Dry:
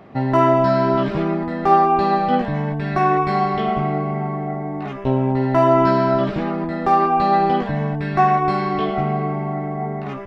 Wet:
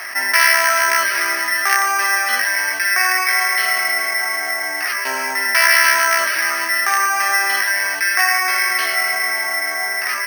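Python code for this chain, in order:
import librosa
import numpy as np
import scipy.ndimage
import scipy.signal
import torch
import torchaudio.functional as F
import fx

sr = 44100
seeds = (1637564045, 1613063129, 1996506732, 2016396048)

y = x + 0.45 * np.pad(x, (int(3.1 * sr / 1000.0), 0))[:len(x)]
y = 10.0 ** (-8.0 / 20.0) * (np.abs((y / 10.0 ** (-8.0 / 20.0) + 3.0) % 4.0 - 2.0) - 1.0)
y = fx.highpass_res(y, sr, hz=1800.0, q=5.1)
y = fx.air_absorb(y, sr, metres=160.0)
y = fx.echo_wet_highpass(y, sr, ms=148, feedback_pct=82, hz=2900.0, wet_db=-14)
y = np.repeat(scipy.signal.resample_poly(y, 1, 6), 6)[:len(y)]
y = fx.env_flatten(y, sr, amount_pct=50)
y = y * 10.0 ** (2.5 / 20.0)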